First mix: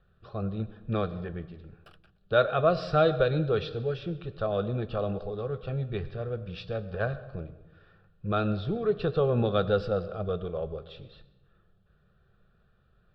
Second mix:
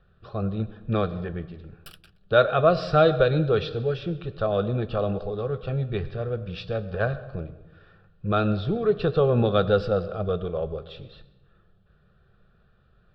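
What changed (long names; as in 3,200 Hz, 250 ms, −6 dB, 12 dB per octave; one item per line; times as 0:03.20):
speech +4.5 dB
background: remove resonant band-pass 700 Hz, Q 0.95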